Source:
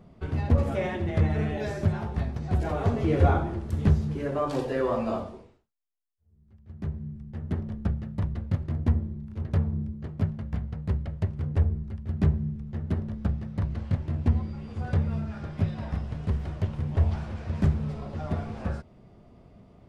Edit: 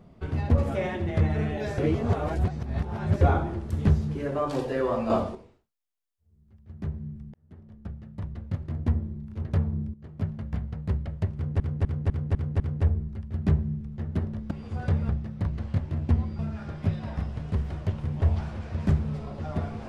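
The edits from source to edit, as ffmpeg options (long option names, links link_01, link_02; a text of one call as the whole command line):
ffmpeg -i in.wav -filter_complex "[0:a]asplit=15[link_01][link_02][link_03][link_04][link_05][link_06][link_07][link_08][link_09][link_10][link_11][link_12][link_13][link_14][link_15];[link_01]atrim=end=1.782[link_16];[link_02]atrim=start=1.778:end=3.212,asetpts=PTS-STARTPTS,areverse[link_17];[link_03]atrim=start=3.208:end=5.102[link_18];[link_04]atrim=start=5.098:end=5.352,asetpts=PTS-STARTPTS,volume=6.5dB[link_19];[link_05]atrim=start=5.348:end=7.34,asetpts=PTS-STARTPTS,afade=type=out:start_time=1.988:duration=0.004:curve=hsin[link_20];[link_06]atrim=start=7.34:end=9.94,asetpts=PTS-STARTPTS,afade=type=in:duration=1.83,afade=type=out:start_time=2.596:duration=0.004:curve=hsin:silence=0.211349[link_21];[link_07]atrim=start=9.94:end=11.602,asetpts=PTS-STARTPTS,afade=type=in:duration=0.47:silence=0.211349[link_22];[link_08]atrim=start=11.348:end=11.602[link_23];[link_09]atrim=start=11.348:end=11.602[link_24];[link_10]atrim=start=11.348:end=11.602[link_25];[link_11]atrim=start=11.348:end=11.602[link_26];[link_12]atrim=start=11.348:end=13.262[link_27];[link_13]atrim=start=14.558:end=15.142[link_28];[link_14]atrim=start=13.258:end=14.562[link_29];[link_15]atrim=start=15.138[link_30];[link_16][link_17]acrossfade=duration=0.004:curve1=hsin:curve2=hsin[link_31];[link_31][link_18]acrossfade=duration=0.004:curve1=hsin:curve2=hsin[link_32];[link_32][link_19]acrossfade=duration=0.004:curve1=hsin:curve2=hsin[link_33];[link_20][link_21][link_22]concat=n=3:v=0:a=1[link_34];[link_33][link_34]acrossfade=duration=0.004:curve1=hsin:curve2=hsin[link_35];[link_35][link_23]acrossfade=duration=0.004:curve1=hsin:curve2=hsin[link_36];[link_36][link_24]acrossfade=duration=0.004:curve1=hsin:curve2=hsin[link_37];[link_37][link_25]acrossfade=duration=0.004:curve1=hsin:curve2=hsin[link_38];[link_38][link_26]acrossfade=duration=0.004:curve1=hsin:curve2=hsin[link_39];[link_39][link_27]acrossfade=duration=0.004:curve1=hsin:curve2=hsin[link_40];[link_40][link_28]acrossfade=duration=0.004:curve1=hsin:curve2=hsin[link_41];[link_41][link_29]acrossfade=duration=0.004:curve1=hsin:curve2=hsin[link_42];[link_42][link_30]acrossfade=duration=0.004:curve1=hsin:curve2=hsin" out.wav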